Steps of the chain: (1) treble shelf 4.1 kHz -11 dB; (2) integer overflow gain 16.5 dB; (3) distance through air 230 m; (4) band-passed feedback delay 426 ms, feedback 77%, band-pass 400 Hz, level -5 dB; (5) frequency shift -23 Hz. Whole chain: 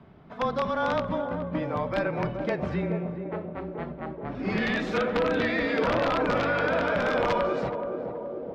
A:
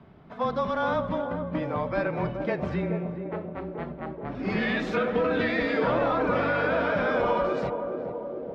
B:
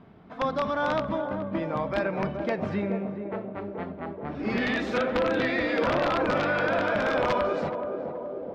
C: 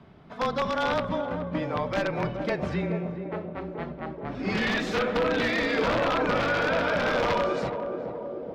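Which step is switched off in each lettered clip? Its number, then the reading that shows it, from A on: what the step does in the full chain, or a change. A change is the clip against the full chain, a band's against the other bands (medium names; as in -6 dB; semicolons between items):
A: 2, distortion -10 dB; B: 5, 125 Hz band -2.5 dB; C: 1, 4 kHz band +4.0 dB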